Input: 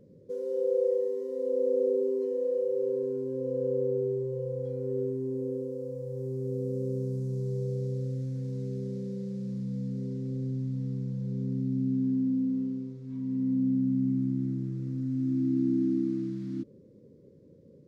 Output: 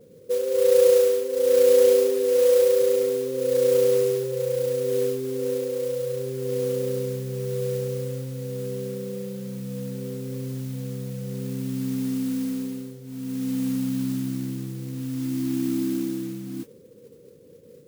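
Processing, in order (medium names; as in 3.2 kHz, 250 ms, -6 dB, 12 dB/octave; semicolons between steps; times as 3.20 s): small resonant body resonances 480/710 Hz, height 13 dB, ringing for 40 ms; modulation noise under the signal 17 dB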